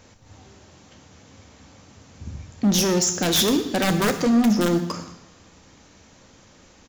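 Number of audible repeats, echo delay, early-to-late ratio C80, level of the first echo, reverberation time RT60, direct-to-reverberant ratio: 1, 0.12 s, 12.5 dB, -18.0 dB, 1.0 s, 6.5 dB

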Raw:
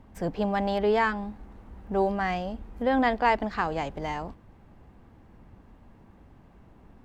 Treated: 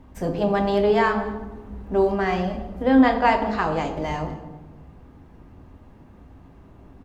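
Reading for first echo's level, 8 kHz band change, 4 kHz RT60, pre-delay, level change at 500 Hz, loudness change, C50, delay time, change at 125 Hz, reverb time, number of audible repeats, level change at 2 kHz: -20.5 dB, n/a, 0.75 s, 3 ms, +6.0 dB, +5.5 dB, 8.0 dB, 0.216 s, +6.5 dB, 1.2 s, 1, +3.5 dB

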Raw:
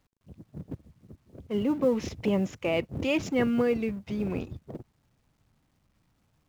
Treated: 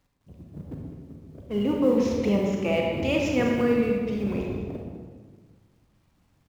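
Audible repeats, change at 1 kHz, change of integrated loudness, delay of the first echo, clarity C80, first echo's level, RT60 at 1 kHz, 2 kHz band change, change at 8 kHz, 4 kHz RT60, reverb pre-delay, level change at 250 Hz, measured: 1, +4.0 dB, +3.5 dB, 0.202 s, 2.5 dB, -12.0 dB, 1.4 s, +3.0 dB, n/a, 1.0 s, 31 ms, +4.0 dB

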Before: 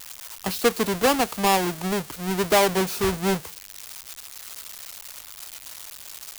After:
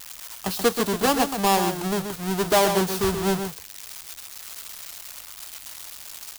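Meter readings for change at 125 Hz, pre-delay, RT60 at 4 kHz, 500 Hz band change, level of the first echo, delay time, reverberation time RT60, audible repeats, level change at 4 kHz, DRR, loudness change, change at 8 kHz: +0.5 dB, none, none, 0.0 dB, -7.5 dB, 0.131 s, none, 1, 0.0 dB, none, 0.0 dB, +0.5 dB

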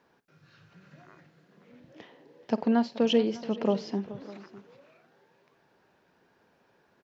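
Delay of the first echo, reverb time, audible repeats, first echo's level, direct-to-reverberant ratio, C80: 51 ms, none, 3, -17.5 dB, none, none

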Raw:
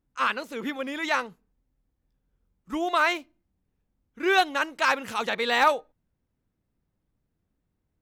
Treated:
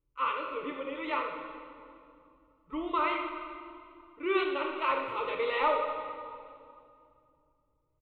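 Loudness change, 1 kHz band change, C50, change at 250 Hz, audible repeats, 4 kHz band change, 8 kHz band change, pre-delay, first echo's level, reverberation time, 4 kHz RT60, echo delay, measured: -6.5 dB, -5.0 dB, 3.5 dB, -4.5 dB, 1, -10.5 dB, under -35 dB, 7 ms, -10.5 dB, 2.5 s, 1.9 s, 82 ms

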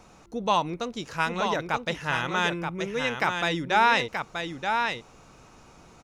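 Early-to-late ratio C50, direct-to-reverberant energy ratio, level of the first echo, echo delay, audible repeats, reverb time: none, none, -5.5 dB, 0.928 s, 1, none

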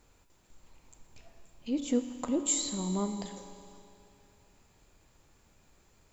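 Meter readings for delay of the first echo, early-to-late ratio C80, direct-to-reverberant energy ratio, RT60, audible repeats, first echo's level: none, 9.0 dB, 7.0 dB, 2.8 s, none, none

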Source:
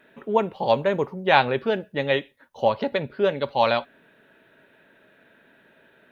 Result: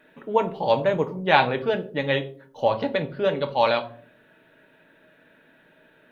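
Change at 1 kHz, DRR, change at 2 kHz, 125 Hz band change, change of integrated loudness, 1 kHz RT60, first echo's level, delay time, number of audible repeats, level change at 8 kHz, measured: 0.0 dB, 6.5 dB, 0.0 dB, +1.5 dB, 0.0 dB, 0.40 s, none, none, none, n/a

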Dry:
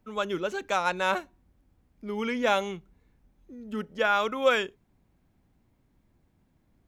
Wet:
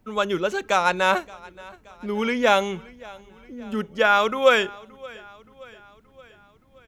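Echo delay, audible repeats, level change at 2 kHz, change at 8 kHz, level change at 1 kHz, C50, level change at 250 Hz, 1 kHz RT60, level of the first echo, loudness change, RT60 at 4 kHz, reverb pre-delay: 0.574 s, 3, +6.5 dB, +6.5 dB, +6.5 dB, none, +5.5 dB, none, -22.5 dB, +6.5 dB, none, none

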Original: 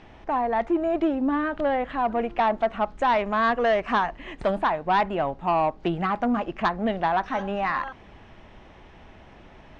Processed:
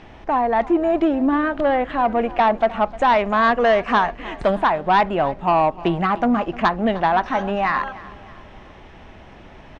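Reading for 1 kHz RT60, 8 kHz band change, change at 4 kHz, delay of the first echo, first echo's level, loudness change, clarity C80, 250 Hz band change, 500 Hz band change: none, n/a, +5.5 dB, 0.305 s, -19.0 dB, +5.5 dB, none, +5.5 dB, +5.5 dB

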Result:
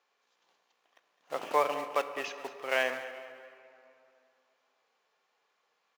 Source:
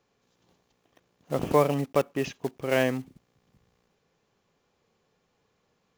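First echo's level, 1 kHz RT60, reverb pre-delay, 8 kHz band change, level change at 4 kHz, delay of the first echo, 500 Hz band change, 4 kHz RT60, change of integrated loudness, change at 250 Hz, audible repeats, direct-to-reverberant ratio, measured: -15.0 dB, 2.7 s, 8 ms, -5.0 dB, -0.5 dB, 0.209 s, -7.0 dB, 1.6 s, -5.5 dB, -17.5 dB, 3, 8.5 dB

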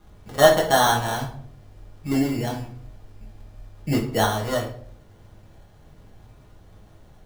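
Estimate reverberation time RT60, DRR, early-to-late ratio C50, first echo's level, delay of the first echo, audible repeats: 0.55 s, -3.0 dB, 8.0 dB, none, none, none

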